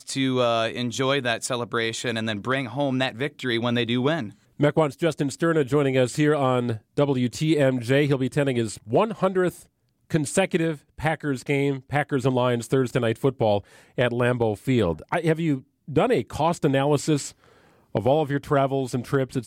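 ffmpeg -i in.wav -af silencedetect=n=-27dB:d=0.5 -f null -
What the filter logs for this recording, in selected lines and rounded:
silence_start: 9.49
silence_end: 10.12 | silence_duration: 0.63
silence_start: 17.28
silence_end: 17.95 | silence_duration: 0.68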